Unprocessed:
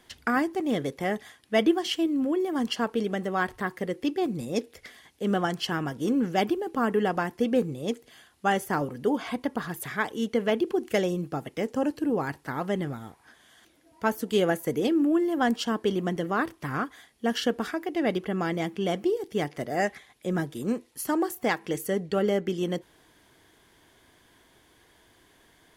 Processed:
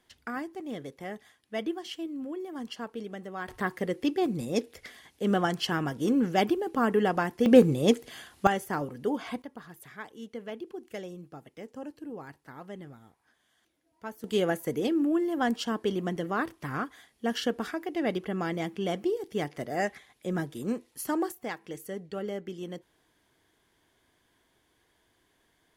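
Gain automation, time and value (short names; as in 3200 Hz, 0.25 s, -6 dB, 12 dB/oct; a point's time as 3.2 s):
-10.5 dB
from 3.48 s 0 dB
from 7.46 s +7.5 dB
from 8.47 s -4 dB
from 9.42 s -14 dB
from 14.24 s -3 dB
from 21.32 s -10 dB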